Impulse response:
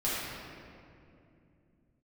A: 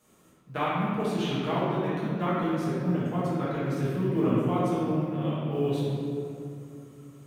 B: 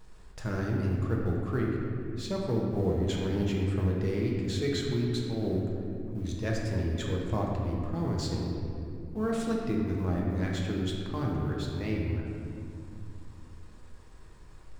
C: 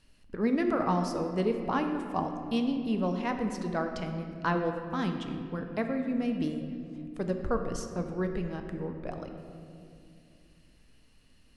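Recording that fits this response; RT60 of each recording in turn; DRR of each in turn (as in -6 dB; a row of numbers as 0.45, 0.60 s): A; 2.6, 2.6, 2.6 s; -10.5, -2.0, 4.5 dB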